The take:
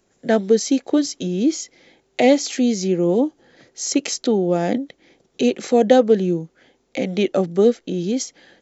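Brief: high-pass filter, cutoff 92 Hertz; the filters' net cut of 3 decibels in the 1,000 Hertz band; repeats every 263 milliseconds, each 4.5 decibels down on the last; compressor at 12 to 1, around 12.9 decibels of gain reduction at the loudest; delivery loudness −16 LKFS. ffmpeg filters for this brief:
ffmpeg -i in.wav -af "highpass=92,equalizer=frequency=1000:width_type=o:gain=-5,acompressor=threshold=-23dB:ratio=12,aecho=1:1:263|526|789|1052|1315|1578|1841|2104|2367:0.596|0.357|0.214|0.129|0.0772|0.0463|0.0278|0.0167|0.01,volume=11.5dB" out.wav

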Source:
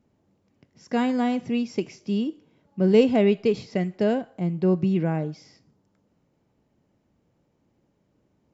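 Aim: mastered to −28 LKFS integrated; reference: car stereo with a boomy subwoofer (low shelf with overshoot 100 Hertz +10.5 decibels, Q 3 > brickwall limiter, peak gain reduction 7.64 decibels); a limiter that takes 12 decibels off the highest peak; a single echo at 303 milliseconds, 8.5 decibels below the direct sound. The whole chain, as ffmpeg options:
ffmpeg -i in.wav -af "alimiter=limit=-19dB:level=0:latency=1,lowshelf=frequency=100:width_type=q:width=3:gain=10.5,aecho=1:1:303:0.376,volume=5.5dB,alimiter=limit=-19dB:level=0:latency=1" out.wav

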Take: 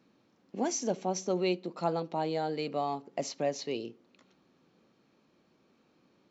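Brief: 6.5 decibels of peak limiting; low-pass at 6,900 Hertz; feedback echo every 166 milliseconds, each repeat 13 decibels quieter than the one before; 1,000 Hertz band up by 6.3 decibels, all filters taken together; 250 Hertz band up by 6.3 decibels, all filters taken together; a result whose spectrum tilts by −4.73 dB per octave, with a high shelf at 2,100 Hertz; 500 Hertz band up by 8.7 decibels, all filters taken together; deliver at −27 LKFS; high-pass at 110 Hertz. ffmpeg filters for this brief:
ffmpeg -i in.wav -af "highpass=110,lowpass=6900,equalizer=frequency=250:width_type=o:gain=5,equalizer=frequency=500:width_type=o:gain=8.5,equalizer=frequency=1000:width_type=o:gain=3.5,highshelf=frequency=2100:gain=3,alimiter=limit=-17dB:level=0:latency=1,aecho=1:1:166|332|498:0.224|0.0493|0.0108,volume=1dB" out.wav

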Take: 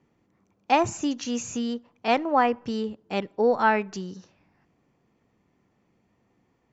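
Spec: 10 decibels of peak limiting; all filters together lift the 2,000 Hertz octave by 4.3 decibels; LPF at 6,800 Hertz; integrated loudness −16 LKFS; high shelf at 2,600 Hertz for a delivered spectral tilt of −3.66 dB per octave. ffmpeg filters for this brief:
ffmpeg -i in.wav -af "lowpass=6800,equalizer=frequency=2000:width_type=o:gain=3.5,highshelf=frequency=2600:gain=5,volume=12dB,alimiter=limit=-2.5dB:level=0:latency=1" out.wav

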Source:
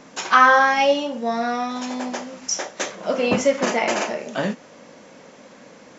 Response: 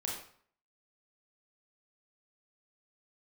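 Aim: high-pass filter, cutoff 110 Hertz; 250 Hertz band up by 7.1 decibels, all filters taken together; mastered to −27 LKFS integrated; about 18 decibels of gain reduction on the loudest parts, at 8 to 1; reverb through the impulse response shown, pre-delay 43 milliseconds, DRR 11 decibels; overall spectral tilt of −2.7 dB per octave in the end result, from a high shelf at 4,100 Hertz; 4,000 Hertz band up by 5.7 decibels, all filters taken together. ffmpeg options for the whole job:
-filter_complex "[0:a]highpass=110,equalizer=frequency=250:width_type=o:gain=8,equalizer=frequency=4000:width_type=o:gain=3,highshelf=frequency=4100:gain=8,acompressor=threshold=-27dB:ratio=8,asplit=2[link_01][link_02];[1:a]atrim=start_sample=2205,adelay=43[link_03];[link_02][link_03]afir=irnorm=-1:irlink=0,volume=-13.5dB[link_04];[link_01][link_04]amix=inputs=2:normalize=0,volume=3dB"

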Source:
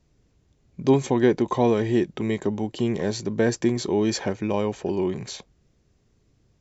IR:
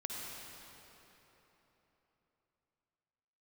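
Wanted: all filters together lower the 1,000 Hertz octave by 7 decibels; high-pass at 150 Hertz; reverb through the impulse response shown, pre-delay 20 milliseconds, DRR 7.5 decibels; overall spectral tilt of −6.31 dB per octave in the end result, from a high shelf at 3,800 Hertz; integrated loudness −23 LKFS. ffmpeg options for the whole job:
-filter_complex "[0:a]highpass=150,equalizer=frequency=1000:width_type=o:gain=-9,highshelf=frequency=3800:gain=-5.5,asplit=2[link_01][link_02];[1:a]atrim=start_sample=2205,adelay=20[link_03];[link_02][link_03]afir=irnorm=-1:irlink=0,volume=-8.5dB[link_04];[link_01][link_04]amix=inputs=2:normalize=0,volume=2dB"

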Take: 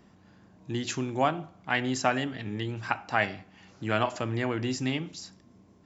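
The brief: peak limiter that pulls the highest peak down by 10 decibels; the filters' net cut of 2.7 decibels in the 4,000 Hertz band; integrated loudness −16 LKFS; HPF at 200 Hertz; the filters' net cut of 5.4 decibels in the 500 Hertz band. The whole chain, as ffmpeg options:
ffmpeg -i in.wav -af "highpass=200,equalizer=frequency=500:width_type=o:gain=-7.5,equalizer=frequency=4000:width_type=o:gain=-4,volume=19.5dB,alimiter=limit=-1dB:level=0:latency=1" out.wav

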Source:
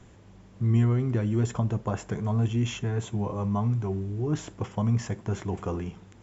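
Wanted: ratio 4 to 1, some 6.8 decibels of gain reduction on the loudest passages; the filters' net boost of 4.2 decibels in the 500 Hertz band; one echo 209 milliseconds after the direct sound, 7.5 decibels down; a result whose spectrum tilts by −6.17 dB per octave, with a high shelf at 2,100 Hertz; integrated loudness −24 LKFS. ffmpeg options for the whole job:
ffmpeg -i in.wav -af "equalizer=frequency=500:width_type=o:gain=5,highshelf=frequency=2100:gain=7.5,acompressor=threshold=-26dB:ratio=4,aecho=1:1:209:0.422,volume=6.5dB" out.wav

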